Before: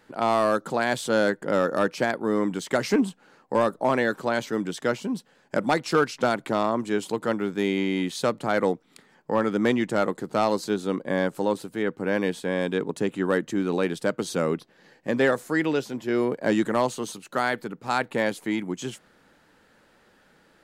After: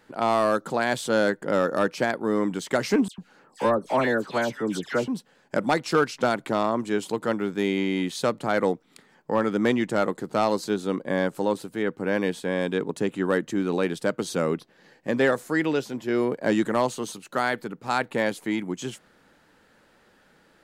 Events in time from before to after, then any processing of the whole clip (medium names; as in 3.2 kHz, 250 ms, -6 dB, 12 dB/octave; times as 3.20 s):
3.08–5.08 s: phase dispersion lows, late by 102 ms, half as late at 2 kHz